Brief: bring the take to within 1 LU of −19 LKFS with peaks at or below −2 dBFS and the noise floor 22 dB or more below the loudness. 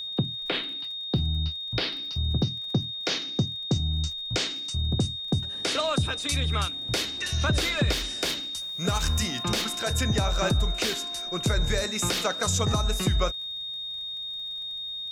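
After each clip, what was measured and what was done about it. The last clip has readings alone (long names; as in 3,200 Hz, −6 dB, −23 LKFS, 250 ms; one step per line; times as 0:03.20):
crackle rate 27 per second; interfering tone 3,700 Hz; level of the tone −32 dBFS; integrated loudness −27.0 LKFS; sample peak −13.5 dBFS; target loudness −19.0 LKFS
→ click removal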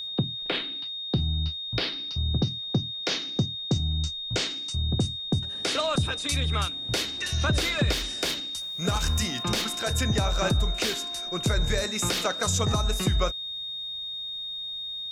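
crackle rate 0.26 per second; interfering tone 3,700 Hz; level of the tone −32 dBFS
→ notch filter 3,700 Hz, Q 30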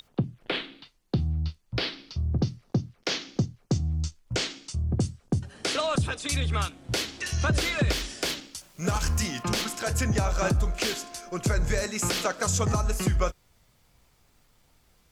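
interfering tone none found; integrated loudness −28.5 LKFS; sample peak −14.0 dBFS; target loudness −19.0 LKFS
→ level +9.5 dB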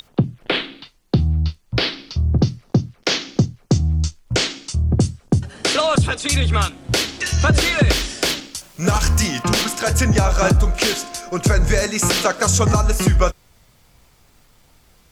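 integrated loudness −19.0 LKFS; sample peak −4.5 dBFS; background noise floor −55 dBFS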